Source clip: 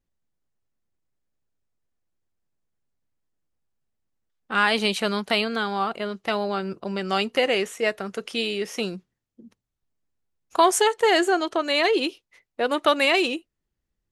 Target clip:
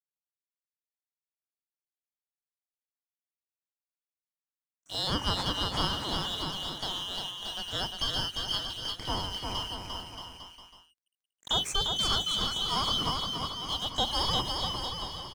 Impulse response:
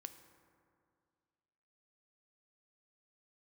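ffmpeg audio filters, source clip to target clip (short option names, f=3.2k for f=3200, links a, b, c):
-filter_complex "[0:a]afftfilt=real='real(if(lt(b,272),68*(eq(floor(b/68),0)*2+eq(floor(b/68),1)*3+eq(floor(b/68),2)*0+eq(floor(b/68),3)*1)+mod(b,68),b),0)':imag='imag(if(lt(b,272),68*(eq(floor(b/68),0)*2+eq(floor(b/68),1)*3+eq(floor(b/68),2)*0+eq(floor(b/68),3)*1)+mod(b,68),b),0)':win_size=2048:overlap=0.75,lowpass=6.5k,equalizer=f=4.2k:t=o:w=1.8:g=-13,bandreject=f=50:t=h:w=6,bandreject=f=100:t=h:w=6,bandreject=f=150:t=h:w=6,bandreject=f=200:t=h:w=6,bandreject=f=250:t=h:w=6,bandreject=f=300:t=h:w=6,bandreject=f=350:t=h:w=6,bandreject=f=400:t=h:w=6,bandreject=f=450:t=h:w=6,asplit=2[a][b];[b]acompressor=threshold=-46dB:ratio=6,volume=-3dB[c];[a][c]amix=inputs=2:normalize=0,asetrate=40572,aresample=44100,aeval=exprs='sgn(val(0))*max(abs(val(0))-0.00398,0)':c=same,asplit=2[d][e];[e]asetrate=88200,aresample=44100,atempo=0.5,volume=-18dB[f];[d][f]amix=inputs=2:normalize=0,asplit=2[g][h];[h]aecho=0:1:350|630|854|1033|1177:0.631|0.398|0.251|0.158|0.1[i];[g][i]amix=inputs=2:normalize=0"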